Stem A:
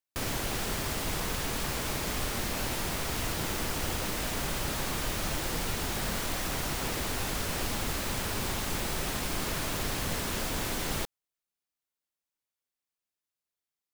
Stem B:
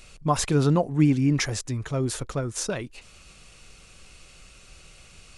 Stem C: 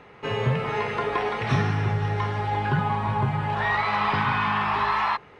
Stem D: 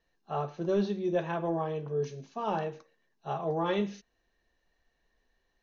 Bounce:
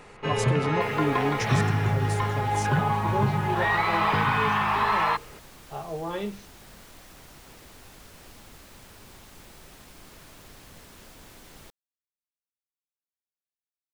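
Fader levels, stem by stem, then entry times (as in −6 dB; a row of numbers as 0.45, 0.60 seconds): −16.5, −8.0, 0.0, −2.5 decibels; 0.65, 0.00, 0.00, 2.45 seconds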